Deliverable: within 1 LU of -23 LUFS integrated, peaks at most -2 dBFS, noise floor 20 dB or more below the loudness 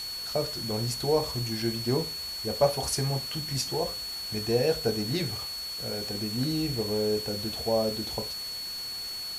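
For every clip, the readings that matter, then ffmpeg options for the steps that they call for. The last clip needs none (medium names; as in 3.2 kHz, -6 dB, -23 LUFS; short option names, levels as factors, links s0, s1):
steady tone 4.4 kHz; tone level -34 dBFS; noise floor -36 dBFS; noise floor target -49 dBFS; loudness -29.0 LUFS; peak level -10.0 dBFS; loudness target -23.0 LUFS
-> -af "bandreject=f=4400:w=30"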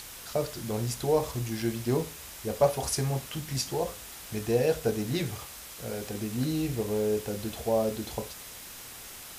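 steady tone not found; noise floor -45 dBFS; noise floor target -51 dBFS
-> -af "afftdn=nr=6:nf=-45"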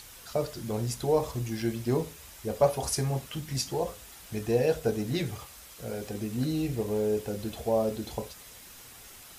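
noise floor -49 dBFS; noise floor target -51 dBFS
-> -af "afftdn=nr=6:nf=-49"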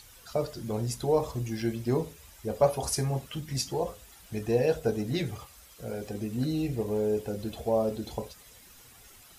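noise floor -54 dBFS; loudness -30.5 LUFS; peak level -10.5 dBFS; loudness target -23.0 LUFS
-> -af "volume=2.37"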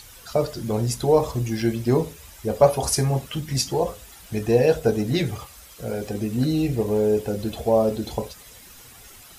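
loudness -23.5 LUFS; peak level -3.0 dBFS; noise floor -46 dBFS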